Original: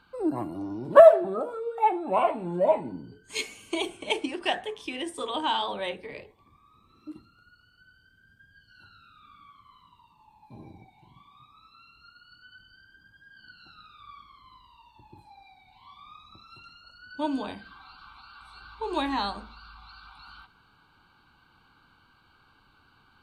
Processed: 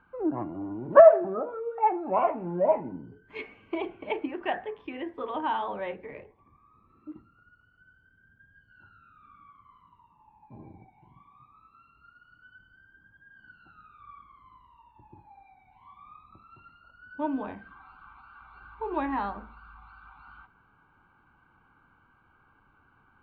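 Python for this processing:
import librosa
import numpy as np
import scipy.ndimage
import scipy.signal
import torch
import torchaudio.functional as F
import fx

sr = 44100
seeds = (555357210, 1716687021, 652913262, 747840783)

y = scipy.signal.sosfilt(scipy.signal.butter(4, 2100.0, 'lowpass', fs=sr, output='sos'), x)
y = y * 10.0 ** (-1.0 / 20.0)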